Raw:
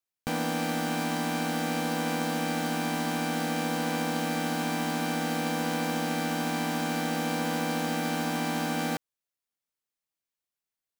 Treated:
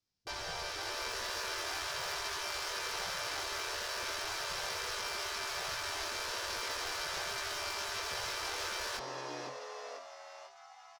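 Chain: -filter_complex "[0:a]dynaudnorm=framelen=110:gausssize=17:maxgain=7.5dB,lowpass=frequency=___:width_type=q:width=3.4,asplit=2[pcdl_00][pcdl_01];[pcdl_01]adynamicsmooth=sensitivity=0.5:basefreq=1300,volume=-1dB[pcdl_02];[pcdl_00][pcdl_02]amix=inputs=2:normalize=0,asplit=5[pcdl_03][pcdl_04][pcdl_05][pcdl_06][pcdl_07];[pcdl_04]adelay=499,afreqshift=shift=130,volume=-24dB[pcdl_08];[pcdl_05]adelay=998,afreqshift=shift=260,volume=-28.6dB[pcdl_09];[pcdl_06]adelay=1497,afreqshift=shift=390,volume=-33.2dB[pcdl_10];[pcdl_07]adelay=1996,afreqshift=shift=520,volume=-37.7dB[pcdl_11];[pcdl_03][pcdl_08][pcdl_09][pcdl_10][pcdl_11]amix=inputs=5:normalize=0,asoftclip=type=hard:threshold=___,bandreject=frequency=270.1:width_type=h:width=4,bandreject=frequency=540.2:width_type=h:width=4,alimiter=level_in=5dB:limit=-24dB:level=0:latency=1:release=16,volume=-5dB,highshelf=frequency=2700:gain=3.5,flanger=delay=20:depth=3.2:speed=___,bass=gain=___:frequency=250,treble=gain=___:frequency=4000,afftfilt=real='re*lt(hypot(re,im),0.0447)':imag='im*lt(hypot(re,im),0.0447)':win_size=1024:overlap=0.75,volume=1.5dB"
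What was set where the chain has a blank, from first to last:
5200, -21.5dB, 0.39, 12, -1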